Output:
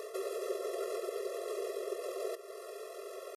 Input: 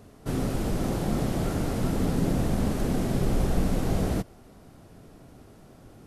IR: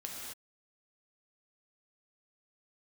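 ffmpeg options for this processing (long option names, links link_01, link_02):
-filter_complex "[0:a]areverse,acompressor=threshold=-31dB:ratio=20,areverse,atempo=1.8,acrossover=split=300[link_01][link_02];[link_02]acompressor=threshold=-60dB:ratio=2.5[link_03];[link_01][link_03]amix=inputs=2:normalize=0,afftfilt=real='re*eq(mod(floor(b*sr/1024/350),2),1)':imag='im*eq(mod(floor(b*sr/1024/350),2),1)':win_size=1024:overlap=0.75,volume=17.5dB"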